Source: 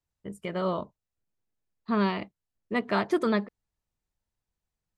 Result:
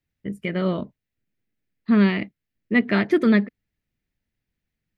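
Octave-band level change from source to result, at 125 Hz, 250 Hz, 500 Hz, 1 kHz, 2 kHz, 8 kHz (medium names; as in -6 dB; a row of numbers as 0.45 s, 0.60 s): +9.5 dB, +10.0 dB, +4.5 dB, -2.0 dB, +8.5 dB, no reading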